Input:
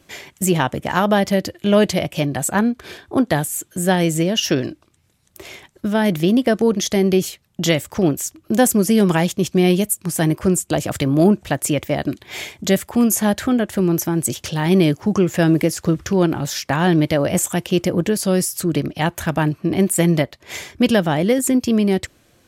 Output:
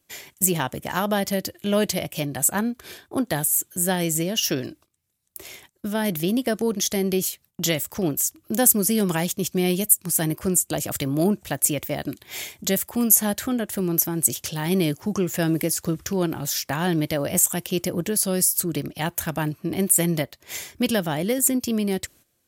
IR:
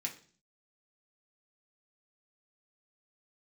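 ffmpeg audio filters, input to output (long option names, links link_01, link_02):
-af "aemphasis=mode=production:type=50fm,agate=range=-12dB:threshold=-43dB:ratio=16:detection=peak,volume=-7dB"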